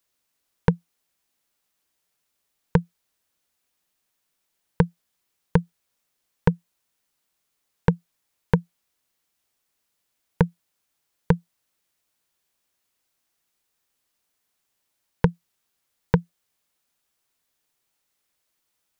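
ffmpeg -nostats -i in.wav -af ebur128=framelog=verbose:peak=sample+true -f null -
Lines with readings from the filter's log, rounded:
Integrated loudness:
  I:         -26.4 LUFS
  Threshold: -37.2 LUFS
Loudness range:
  LRA:         4.8 LU
  Threshold: -51.9 LUFS
  LRA low:   -34.9 LUFS
  LRA high:  -30.2 LUFS
Sample peak:
  Peak:       -2.6 dBFS
True peak:
  Peak:       -2.6 dBFS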